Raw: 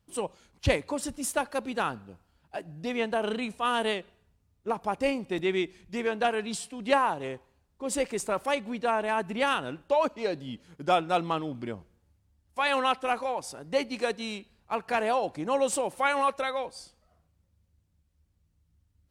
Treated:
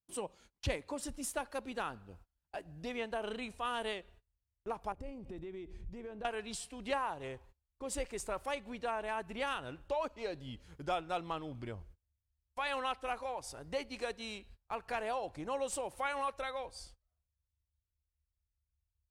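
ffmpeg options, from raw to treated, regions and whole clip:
ffmpeg -i in.wav -filter_complex "[0:a]asettb=1/sr,asplit=3[link_01][link_02][link_03];[link_01]atrim=end=4.924[link_04];[link_02]atrim=start=4.92:end=6.25,asetpts=PTS-STARTPTS,afade=type=in:duration=0.004:curve=qsin,afade=type=out:start_time=1.326:duration=0.004:curve=qsin,tiltshelf=frequency=770:gain=8,acompressor=threshold=-36dB:ratio=6:attack=3.2:release=140:knee=1:detection=peak[link_05];[link_03]atrim=start=6.246[link_06];[link_04][link_05]acrossfade=duration=0.004:curve1=hsin:curve2=qsin[link_07];[link_07][link_06]acrossfade=duration=0.004:curve1=qsin:curve2=hsin,agate=range=-26dB:threshold=-55dB:ratio=16:detection=peak,asubboost=boost=9.5:cutoff=62,acompressor=threshold=-45dB:ratio=1.5,volume=-2dB" out.wav

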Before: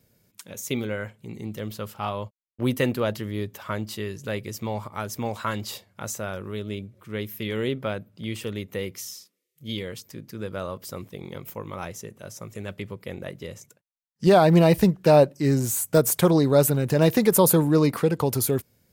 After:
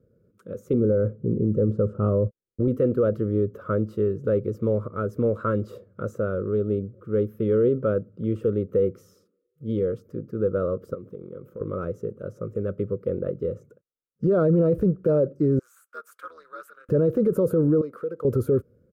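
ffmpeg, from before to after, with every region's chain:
ffmpeg -i in.wav -filter_complex "[0:a]asettb=1/sr,asplit=3[link_01][link_02][link_03];[link_01]atrim=end=0.734[link_04];[link_02]atrim=start=0.73:end=2.68,asetpts=PTS-STARTPTS,afade=type=in:duration=0.004:curve=qsin,afade=type=out:start_time=1.946:duration=0.004:curve=qsin,lowpass=frequency=8000:width_type=q:width=1.6,tiltshelf=frequency=930:gain=9[link_05];[link_03]atrim=start=2.676[link_06];[link_04][link_05]acrossfade=duration=0.004:curve1=hsin:curve2=qsin[link_07];[link_07][link_06]acrossfade=duration=0.004:curve1=qsin:curve2=hsin,asettb=1/sr,asplit=3[link_08][link_09][link_10];[link_08]atrim=end=10.944[link_11];[link_09]atrim=start=10.94:end=11.61,asetpts=PTS-STARTPTS,afade=type=in:duration=0.004:curve=qsin,afade=type=out:start_time=0.666:duration=0.004:curve=qsin,highpass=110,acompressor=threshold=-42dB:ratio=5:attack=3.2:release=140:knee=1:detection=peak[link_12];[link_10]atrim=start=11.606[link_13];[link_11][link_12]acrossfade=duration=0.004:curve1=hsin:curve2=qsin[link_14];[link_14][link_13]acrossfade=duration=0.004:curve1=qsin:curve2=hsin,asettb=1/sr,asplit=3[link_15][link_16][link_17];[link_15]atrim=end=15.594[link_18];[link_16]atrim=start=15.59:end=16.89,asetpts=PTS-STARTPTS,afade=type=in:duration=0.004:curve=qsin,afade=type=out:start_time=1.296:duration=0.004:curve=qsin,highpass=frequency=1300:width=0.5412,highpass=frequency=1300:width=1.3066,highshelf=frequency=4900:gain=-6,tremolo=f=240:d=0.71[link_19];[link_17]atrim=start=16.886[link_20];[link_18][link_19]acrossfade=duration=0.004:curve1=hsin:curve2=qsin[link_21];[link_21][link_20]acrossfade=duration=0.004:curve1=qsin:curve2=hsin,asettb=1/sr,asplit=3[link_22][link_23][link_24];[link_22]atrim=end=17.814[link_25];[link_23]atrim=start=17.81:end=18.25,asetpts=PTS-STARTPTS,afade=type=in:duration=0.004:curve=qsin,afade=type=out:start_time=0.436:duration=0.004:curve=qsin,highpass=frequency=1300:poles=1,acompressor=threshold=-38dB:ratio=2.5:attack=3.2:release=140:knee=1:detection=peak[link_26];[link_24]atrim=start=18.246[link_27];[link_25][link_26]acrossfade=duration=0.004:curve1=hsin:curve2=qsin[link_28];[link_28][link_27]acrossfade=duration=0.004:curve1=qsin:curve2=hsin,firequalizer=gain_entry='entry(260,0);entry(500,8);entry(800,-26);entry(1300,-1);entry(1900,-24);entry(4300,-30)':delay=0.05:min_phase=1,dynaudnorm=framelen=120:gausssize=5:maxgain=4dB,alimiter=limit=-15dB:level=0:latency=1:release=24,volume=1.5dB" out.wav

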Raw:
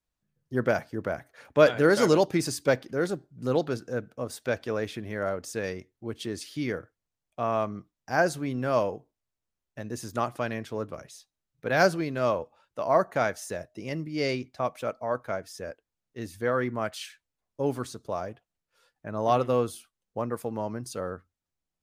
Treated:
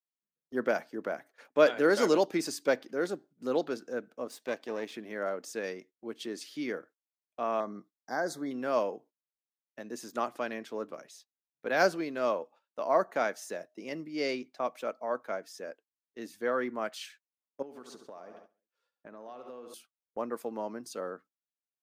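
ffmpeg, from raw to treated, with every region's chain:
ffmpeg -i in.wav -filter_complex "[0:a]asettb=1/sr,asplit=3[link_01][link_02][link_03];[link_01]atrim=end=4.294[link_04];[link_02]atrim=start=4.29:end=4.92,asetpts=PTS-STARTPTS,afade=type=in:duration=0.004:curve=qsin,afade=type=out:start_time=0.626:duration=0.004:curve=qsin,aeval=exprs='if(lt(val(0),0),0.447*val(0),val(0))':channel_layout=same,bandreject=frequency=1400:width=8.1[link_05];[link_03]atrim=start=4.916[link_06];[link_04][link_05]acrossfade=duration=0.004:curve1=hsin:curve2=qsin[link_07];[link_07][link_06]acrossfade=duration=0.004:curve1=qsin:curve2=hsin,asettb=1/sr,asplit=3[link_08][link_09][link_10];[link_08]atrim=end=7.604[link_11];[link_09]atrim=start=7.6:end=8.51,asetpts=PTS-STARTPTS,afade=type=in:duration=0.004:curve=qsin,afade=type=out:start_time=0.906:duration=0.004:curve=qsin,lowshelf=frequency=320:gain=3,acompressor=threshold=-25dB:ratio=2.5:attack=3.2:release=140:knee=1:detection=peak,asuperstop=centerf=2700:order=20:qfactor=2.4[link_12];[link_10]atrim=start=8.506[link_13];[link_11][link_12]acrossfade=duration=0.004:curve1=hsin:curve2=qsin[link_14];[link_14][link_13]acrossfade=duration=0.004:curve1=qsin:curve2=hsin,asettb=1/sr,asplit=3[link_15][link_16][link_17];[link_15]atrim=end=17.624[link_18];[link_16]atrim=start=17.62:end=19.74,asetpts=PTS-STARTPTS,afade=type=in:duration=0.004:curve=qsin,afade=type=out:start_time=2.116:duration=0.004:curve=qsin,highshelf=frequency=5900:gain=-5.5,aecho=1:1:69|138|207|276|345:0.266|0.133|0.0665|0.0333|0.0166,atrim=end_sample=93492,acompressor=threshold=-38dB:ratio=10:attack=3.2:release=140:knee=1:detection=peak[link_19];[link_17]atrim=start=19.736[link_20];[link_18][link_19]acrossfade=duration=0.004:curve1=hsin:curve2=qsin[link_21];[link_21][link_20]acrossfade=duration=0.004:curve1=qsin:curve2=hsin,highpass=frequency=220:width=0.5412,highpass=frequency=220:width=1.3066,agate=range=-13dB:threshold=-51dB:ratio=16:detection=peak,equalizer=frequency=10000:width=2.2:gain=-4.5,volume=-3.5dB" out.wav

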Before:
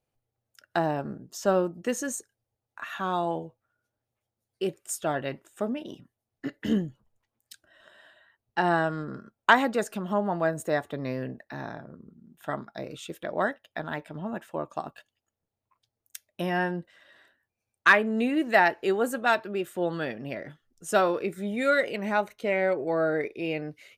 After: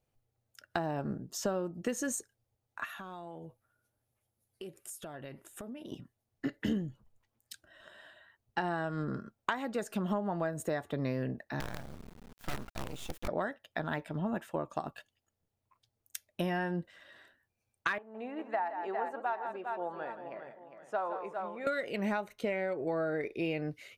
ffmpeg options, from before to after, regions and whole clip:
ffmpeg -i in.wav -filter_complex "[0:a]asettb=1/sr,asplit=3[link_01][link_02][link_03];[link_01]atrim=end=2.854[link_04];[link_02]atrim=start=2.85:end=5.92,asetpts=PTS-STARTPTS,afade=type=in:duration=0.004:curve=qsin,afade=type=out:start_time=3.066:duration=0.004:curve=qsin,equalizer=frequency=11000:width=2.3:gain=12,acompressor=threshold=-42dB:ratio=8:attack=3.2:release=140:knee=1:detection=peak[link_05];[link_03]atrim=start=5.916[link_06];[link_04][link_05]acrossfade=duration=0.004:curve1=hsin:curve2=qsin[link_07];[link_07][link_06]acrossfade=duration=0.004:curve1=qsin:curve2=hsin,asettb=1/sr,asplit=3[link_08][link_09][link_10];[link_08]atrim=end=11.604[link_11];[link_09]atrim=start=11.6:end=13.28,asetpts=PTS-STARTPTS,afade=type=in:duration=0.004:curve=qsin,afade=type=out:start_time=1.676:duration=0.004:curve=qsin,acrusher=bits=6:dc=4:mix=0:aa=0.000001,acompressor=threshold=-35dB:ratio=2.5:attack=3.2:release=140:knee=1:detection=peak,aeval=exprs='abs(val(0))':channel_layout=same[link_12];[link_10]atrim=start=13.276[link_13];[link_11][link_12]acrossfade=duration=0.004:curve1=hsin:curve2=qsin[link_14];[link_14][link_13]acrossfade=duration=0.004:curve1=qsin:curve2=hsin,asettb=1/sr,asplit=3[link_15][link_16][link_17];[link_15]atrim=end=17.984[link_18];[link_16]atrim=start=17.98:end=21.67,asetpts=PTS-STARTPTS,afade=type=in:duration=0.004:curve=qsin,afade=type=out:start_time=3.686:duration=0.004:curve=qsin,bandpass=frequency=890:width_type=q:width=2.8,aecho=1:1:164|405|795:0.251|0.335|0.133,atrim=end_sample=162729[link_19];[link_17]atrim=start=21.666[link_20];[link_18][link_19]acrossfade=duration=0.004:curve1=hsin:curve2=qsin[link_21];[link_21][link_20]acrossfade=duration=0.004:curve1=qsin:curve2=hsin,acompressor=threshold=-30dB:ratio=10,lowshelf=frequency=140:gain=6" out.wav

